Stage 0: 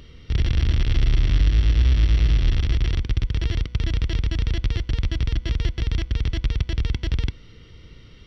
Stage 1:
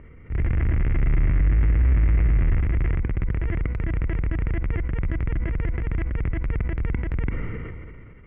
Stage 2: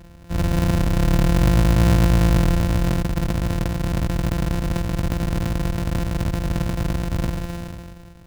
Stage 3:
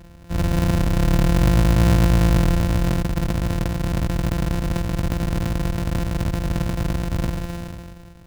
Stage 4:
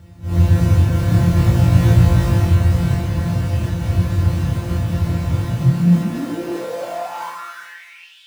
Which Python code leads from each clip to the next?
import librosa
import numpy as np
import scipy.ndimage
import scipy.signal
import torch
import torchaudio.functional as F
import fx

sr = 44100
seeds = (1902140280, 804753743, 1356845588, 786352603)

y1 = scipy.signal.sosfilt(scipy.signal.ellip(4, 1.0, 50, 2200.0, 'lowpass', fs=sr, output='sos'), x)
y1 = fx.transient(y1, sr, attack_db=-7, sustain_db=3)
y1 = fx.sustainer(y1, sr, db_per_s=26.0)
y2 = np.r_[np.sort(y1[:len(y1) // 256 * 256].reshape(-1, 256), axis=1).ravel(), y1[len(y1) // 256 * 256:]]
y2 = fx.low_shelf(y2, sr, hz=200.0, db=4.5)
y2 = fx.notch_comb(y2, sr, f0_hz=410.0)
y3 = y2
y4 = fx.phase_scramble(y3, sr, seeds[0], window_ms=200)
y4 = fx.echo_stepped(y4, sr, ms=375, hz=940.0, octaves=0.7, feedback_pct=70, wet_db=-6)
y4 = fx.filter_sweep_highpass(y4, sr, from_hz=89.0, to_hz=3200.0, start_s=5.39, end_s=8.21, q=7.8)
y4 = y4 * 10.0 ** (-1.5 / 20.0)